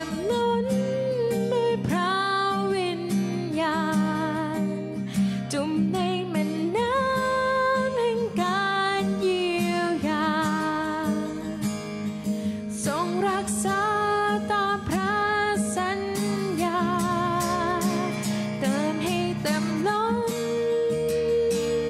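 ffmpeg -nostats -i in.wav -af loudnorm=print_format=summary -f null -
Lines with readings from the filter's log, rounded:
Input Integrated:    -25.3 LUFS
Input True Peak:     -13.8 dBTP
Input LRA:             1.9 LU
Input Threshold:     -35.3 LUFS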